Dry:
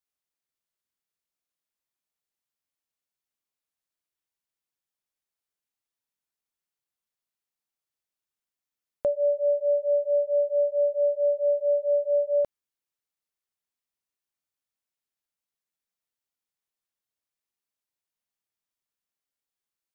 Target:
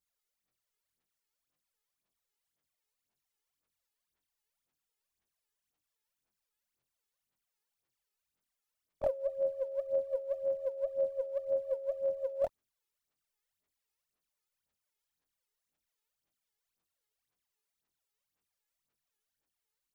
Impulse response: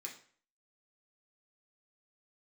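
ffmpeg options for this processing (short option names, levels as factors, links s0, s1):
-af "afftfilt=real='re':imag='-im':win_size=2048:overlap=0.75,aphaser=in_gain=1:out_gain=1:delay=2.4:decay=0.73:speed=1.9:type=sinusoidal,volume=1.41"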